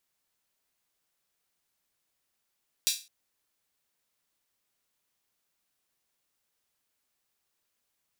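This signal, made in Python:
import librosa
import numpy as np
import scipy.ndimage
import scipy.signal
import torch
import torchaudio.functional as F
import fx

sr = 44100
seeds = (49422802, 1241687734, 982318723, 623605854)

y = fx.drum_hat_open(sr, length_s=0.21, from_hz=3800.0, decay_s=0.31)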